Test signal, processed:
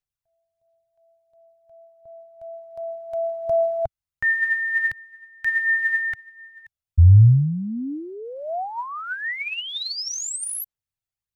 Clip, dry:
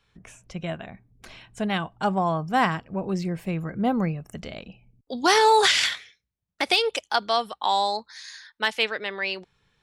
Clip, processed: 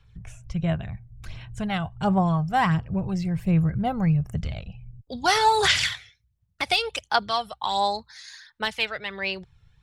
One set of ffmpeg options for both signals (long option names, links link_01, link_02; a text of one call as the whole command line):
ffmpeg -i in.wav -af "lowshelf=frequency=170:width_type=q:width=1.5:gain=13,aphaser=in_gain=1:out_gain=1:delay=1.5:decay=0.44:speed=1.4:type=sinusoidal,volume=-2.5dB" out.wav